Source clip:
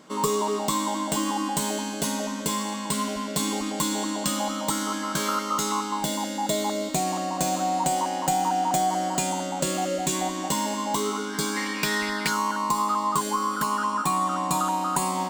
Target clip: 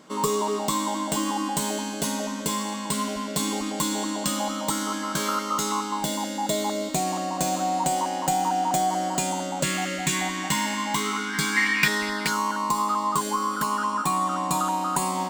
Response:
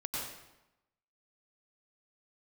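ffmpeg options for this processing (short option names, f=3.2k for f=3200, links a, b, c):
-filter_complex "[0:a]asettb=1/sr,asplit=3[a][b][c];[a]atrim=end=9.634[d];[b]atrim=start=9.63:end=11.88,asetpts=PTS-STARTPTS,afade=t=in:d=0.004:c=qsin,afade=t=out:st=2.246:d=0.004:c=qsin,equalizer=f=125:t=o:w=1:g=6,equalizer=f=500:t=o:w=1:g=-10,equalizer=f=2k:t=o:w=1:g=12[e];[c]atrim=start=11.876[f];[d][e]acrossfade=d=0.004:c1=hsin:c2=qsin[g];[g][f]acrossfade=d=0.004:c1=qsin:c2=hsin"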